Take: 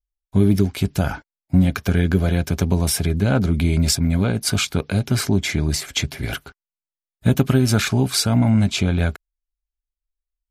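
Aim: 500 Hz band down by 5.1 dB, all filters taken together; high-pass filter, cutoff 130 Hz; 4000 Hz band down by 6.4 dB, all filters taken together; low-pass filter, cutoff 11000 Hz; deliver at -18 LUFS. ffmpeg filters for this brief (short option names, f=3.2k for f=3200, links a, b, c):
-af "highpass=130,lowpass=11k,equalizer=f=500:t=o:g=-7,equalizer=f=4k:t=o:g=-8.5,volume=5dB"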